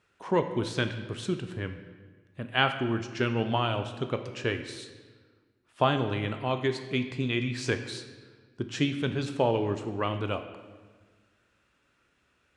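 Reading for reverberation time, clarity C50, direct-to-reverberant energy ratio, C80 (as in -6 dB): 1.4 s, 9.5 dB, 7.5 dB, 11.0 dB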